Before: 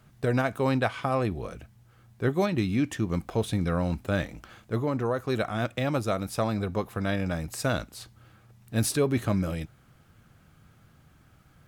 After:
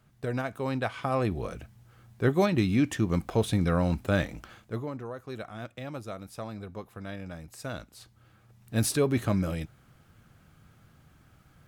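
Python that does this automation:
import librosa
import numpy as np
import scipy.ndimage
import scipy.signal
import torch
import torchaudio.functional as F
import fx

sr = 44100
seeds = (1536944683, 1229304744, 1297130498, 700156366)

y = fx.gain(x, sr, db=fx.line((0.68, -6.0), (1.41, 1.5), (4.4, 1.5), (5.05, -11.0), (7.55, -11.0), (8.77, -0.5)))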